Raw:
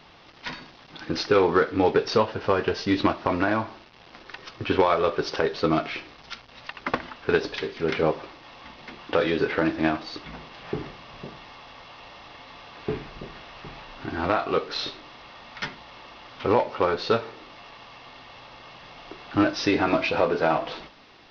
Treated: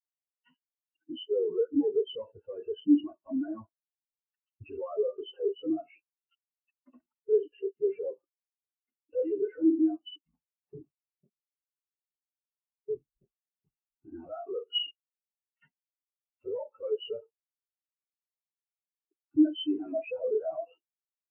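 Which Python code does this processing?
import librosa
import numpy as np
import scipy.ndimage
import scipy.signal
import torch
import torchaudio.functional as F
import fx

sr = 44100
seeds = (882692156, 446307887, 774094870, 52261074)

y = fx.freq_compress(x, sr, knee_hz=2600.0, ratio=4.0)
y = fx.fuzz(y, sr, gain_db=35.0, gate_db=-41.0)
y = fx.spectral_expand(y, sr, expansion=4.0)
y = y * librosa.db_to_amplitude(-3.0)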